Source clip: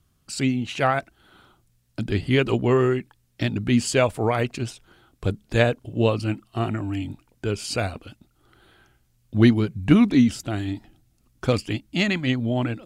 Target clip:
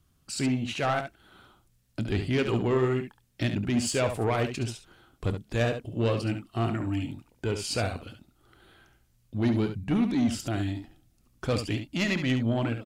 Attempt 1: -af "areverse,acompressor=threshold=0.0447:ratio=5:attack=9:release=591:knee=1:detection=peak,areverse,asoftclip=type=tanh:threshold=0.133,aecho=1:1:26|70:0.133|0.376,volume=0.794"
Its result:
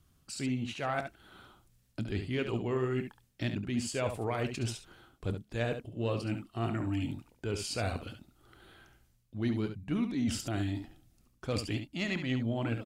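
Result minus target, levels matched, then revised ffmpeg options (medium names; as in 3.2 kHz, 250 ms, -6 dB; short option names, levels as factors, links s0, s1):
compression: peak gain reduction +9 dB
-af "areverse,acompressor=threshold=0.168:ratio=5:attack=9:release=591:knee=1:detection=peak,areverse,asoftclip=type=tanh:threshold=0.133,aecho=1:1:26|70:0.133|0.376,volume=0.794"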